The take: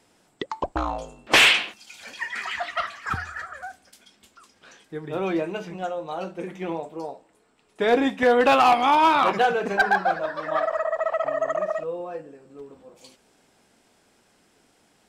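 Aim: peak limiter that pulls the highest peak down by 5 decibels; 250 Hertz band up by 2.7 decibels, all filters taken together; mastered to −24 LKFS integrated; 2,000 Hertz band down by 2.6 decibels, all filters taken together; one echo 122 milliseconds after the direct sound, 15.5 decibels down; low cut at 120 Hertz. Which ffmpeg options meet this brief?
ffmpeg -i in.wav -af "highpass=120,equalizer=frequency=250:width_type=o:gain=3.5,equalizer=frequency=2000:width_type=o:gain=-3.5,alimiter=limit=-13dB:level=0:latency=1,aecho=1:1:122:0.168,volume=1dB" out.wav

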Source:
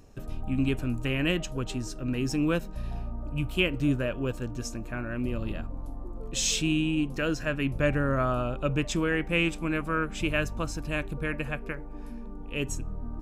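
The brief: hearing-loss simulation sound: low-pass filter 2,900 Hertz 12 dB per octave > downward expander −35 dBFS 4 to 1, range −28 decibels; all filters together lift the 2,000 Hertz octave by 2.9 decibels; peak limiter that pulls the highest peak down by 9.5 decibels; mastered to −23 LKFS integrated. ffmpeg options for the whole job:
ffmpeg -i in.wav -af "equalizer=frequency=2000:width_type=o:gain=5.5,alimiter=limit=-17.5dB:level=0:latency=1,lowpass=2900,agate=range=-28dB:threshold=-35dB:ratio=4,volume=7.5dB" out.wav

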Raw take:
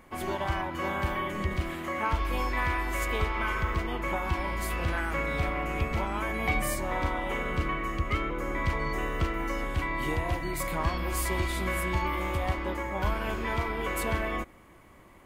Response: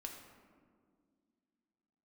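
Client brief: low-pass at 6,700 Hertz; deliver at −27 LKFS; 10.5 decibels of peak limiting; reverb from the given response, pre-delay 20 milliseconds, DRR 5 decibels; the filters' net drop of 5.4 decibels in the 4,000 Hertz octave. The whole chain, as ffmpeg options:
-filter_complex "[0:a]lowpass=6700,equalizer=frequency=4000:width_type=o:gain=-7.5,alimiter=level_in=1.5dB:limit=-24dB:level=0:latency=1,volume=-1.5dB,asplit=2[link_01][link_02];[1:a]atrim=start_sample=2205,adelay=20[link_03];[link_02][link_03]afir=irnorm=-1:irlink=0,volume=-1.5dB[link_04];[link_01][link_04]amix=inputs=2:normalize=0,volume=6.5dB"

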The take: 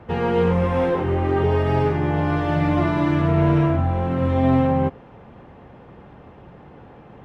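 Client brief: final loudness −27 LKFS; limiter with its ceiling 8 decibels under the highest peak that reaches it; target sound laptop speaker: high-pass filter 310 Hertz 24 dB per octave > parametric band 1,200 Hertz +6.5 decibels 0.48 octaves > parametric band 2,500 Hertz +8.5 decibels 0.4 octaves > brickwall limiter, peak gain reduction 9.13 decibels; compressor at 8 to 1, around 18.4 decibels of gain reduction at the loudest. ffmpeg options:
ffmpeg -i in.wav -af "acompressor=threshold=-34dB:ratio=8,alimiter=level_in=8dB:limit=-24dB:level=0:latency=1,volume=-8dB,highpass=frequency=310:width=0.5412,highpass=frequency=310:width=1.3066,equalizer=frequency=1200:width_type=o:width=0.48:gain=6.5,equalizer=frequency=2500:width_type=o:width=0.4:gain=8.5,volume=20dB,alimiter=limit=-19dB:level=0:latency=1" out.wav

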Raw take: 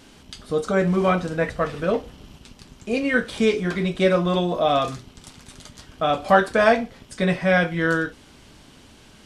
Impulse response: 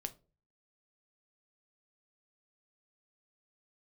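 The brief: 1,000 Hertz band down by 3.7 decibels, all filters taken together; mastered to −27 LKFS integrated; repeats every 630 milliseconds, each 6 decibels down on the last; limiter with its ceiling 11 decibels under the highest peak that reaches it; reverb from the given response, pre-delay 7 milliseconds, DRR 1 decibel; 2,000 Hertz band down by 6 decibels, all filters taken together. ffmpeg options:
-filter_complex "[0:a]equalizer=frequency=1000:width_type=o:gain=-4,equalizer=frequency=2000:width_type=o:gain=-6.5,alimiter=limit=-16.5dB:level=0:latency=1,aecho=1:1:630|1260|1890|2520|3150|3780:0.501|0.251|0.125|0.0626|0.0313|0.0157,asplit=2[link_01][link_02];[1:a]atrim=start_sample=2205,adelay=7[link_03];[link_02][link_03]afir=irnorm=-1:irlink=0,volume=1dB[link_04];[link_01][link_04]amix=inputs=2:normalize=0,volume=-3dB"

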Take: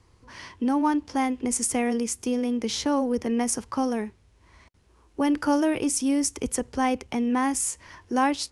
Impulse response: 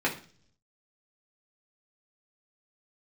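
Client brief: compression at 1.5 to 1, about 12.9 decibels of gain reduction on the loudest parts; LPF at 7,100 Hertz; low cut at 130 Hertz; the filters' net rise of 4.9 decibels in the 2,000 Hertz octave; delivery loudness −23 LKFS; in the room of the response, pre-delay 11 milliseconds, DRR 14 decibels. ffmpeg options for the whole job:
-filter_complex "[0:a]highpass=130,lowpass=7100,equalizer=frequency=2000:width_type=o:gain=6,acompressor=threshold=-55dB:ratio=1.5,asplit=2[link_01][link_02];[1:a]atrim=start_sample=2205,adelay=11[link_03];[link_02][link_03]afir=irnorm=-1:irlink=0,volume=-25dB[link_04];[link_01][link_04]amix=inputs=2:normalize=0,volume=14dB"

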